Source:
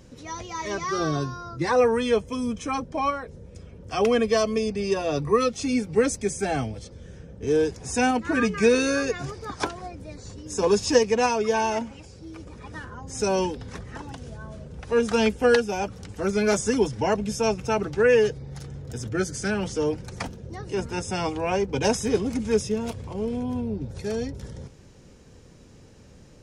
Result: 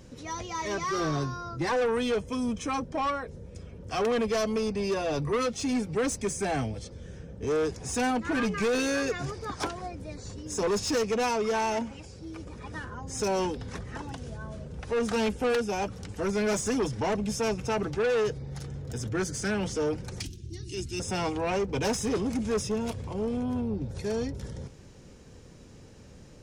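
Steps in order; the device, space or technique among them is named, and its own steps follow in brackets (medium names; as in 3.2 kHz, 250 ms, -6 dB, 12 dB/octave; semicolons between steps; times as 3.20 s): 20.20–21.00 s: FFT filter 110 Hz 0 dB, 220 Hz -11 dB, 350 Hz 0 dB, 500 Hz -27 dB, 1.1 kHz -27 dB, 2.8 kHz +1 dB, 4.6 kHz +4 dB; saturation between pre-emphasis and de-emphasis (treble shelf 6 kHz +6.5 dB; saturation -23 dBFS, distortion -8 dB; treble shelf 6 kHz -6.5 dB)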